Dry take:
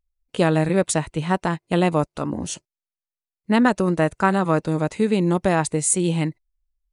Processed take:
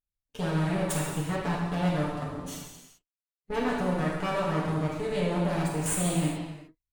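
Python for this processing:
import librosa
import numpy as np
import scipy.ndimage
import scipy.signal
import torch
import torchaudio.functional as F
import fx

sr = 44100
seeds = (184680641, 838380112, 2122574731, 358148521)

y = fx.lower_of_two(x, sr, delay_ms=6.9)
y = fx.level_steps(y, sr, step_db=12)
y = fx.rev_gated(y, sr, seeds[0], gate_ms=450, shape='falling', drr_db=-4.5)
y = y * librosa.db_to_amplitude(-8.0)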